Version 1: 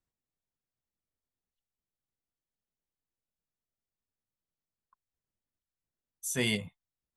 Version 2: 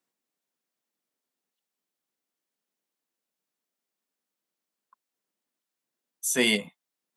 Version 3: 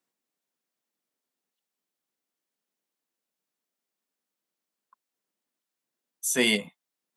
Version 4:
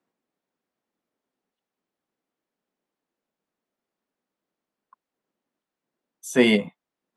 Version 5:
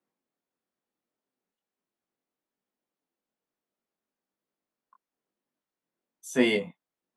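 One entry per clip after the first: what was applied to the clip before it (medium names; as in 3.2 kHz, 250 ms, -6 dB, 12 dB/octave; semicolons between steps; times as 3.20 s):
high-pass 210 Hz 24 dB/octave; trim +7.5 dB
no audible change
low-pass 1 kHz 6 dB/octave; trim +9 dB
chorus 1.1 Hz, delay 19.5 ms, depth 4.4 ms; trim -2.5 dB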